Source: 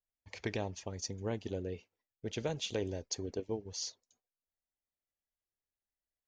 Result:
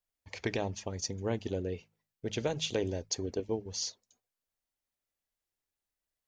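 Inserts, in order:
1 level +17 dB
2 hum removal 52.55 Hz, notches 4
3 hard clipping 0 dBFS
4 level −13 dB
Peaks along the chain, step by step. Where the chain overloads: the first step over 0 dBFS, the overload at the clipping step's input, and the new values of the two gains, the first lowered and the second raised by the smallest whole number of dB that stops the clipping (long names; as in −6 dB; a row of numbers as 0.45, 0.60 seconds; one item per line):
−4.0, −4.5, −4.5, −17.5 dBFS
no step passes full scale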